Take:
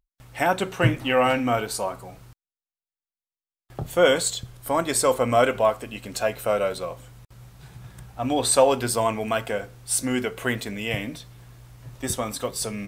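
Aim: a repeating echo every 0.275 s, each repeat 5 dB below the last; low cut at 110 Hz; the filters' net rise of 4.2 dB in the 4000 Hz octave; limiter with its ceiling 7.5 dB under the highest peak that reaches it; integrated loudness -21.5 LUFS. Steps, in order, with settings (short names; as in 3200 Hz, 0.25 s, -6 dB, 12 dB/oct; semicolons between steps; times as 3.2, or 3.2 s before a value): HPF 110 Hz; bell 4000 Hz +5.5 dB; limiter -12 dBFS; feedback echo 0.275 s, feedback 56%, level -5 dB; gain +2.5 dB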